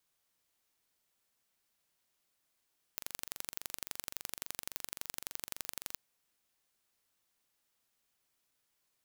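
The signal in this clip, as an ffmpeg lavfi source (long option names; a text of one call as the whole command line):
ffmpeg -f lavfi -i "aevalsrc='0.316*eq(mod(n,1869),0)*(0.5+0.5*eq(mod(n,3738),0))':duration=2.97:sample_rate=44100" out.wav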